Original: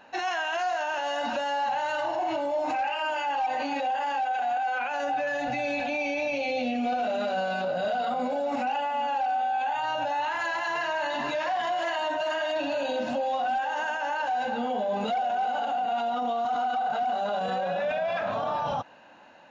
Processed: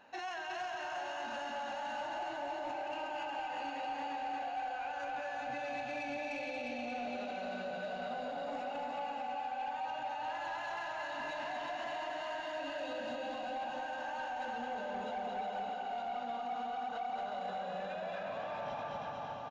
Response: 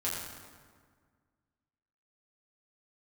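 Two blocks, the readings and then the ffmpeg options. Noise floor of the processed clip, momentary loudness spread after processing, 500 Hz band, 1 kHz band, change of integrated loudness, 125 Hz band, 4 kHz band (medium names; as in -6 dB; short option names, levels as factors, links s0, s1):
-42 dBFS, 1 LU, -12.0 dB, -11.0 dB, -11.5 dB, -10.5 dB, -10.5 dB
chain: -filter_complex "[0:a]asplit=2[s0][s1];[s1]aecho=0:1:228|456|684|912|1140|1368|1596|1824:0.668|0.388|0.225|0.13|0.0756|0.0439|0.0254|0.0148[s2];[s0][s2]amix=inputs=2:normalize=0,alimiter=level_in=1.06:limit=0.0631:level=0:latency=1:release=145,volume=0.944,asplit=2[s3][s4];[s4]aecho=0:1:360|648|878.4|1063|1210:0.631|0.398|0.251|0.158|0.1[s5];[s3][s5]amix=inputs=2:normalize=0,asoftclip=type=tanh:threshold=0.0631,volume=0.398"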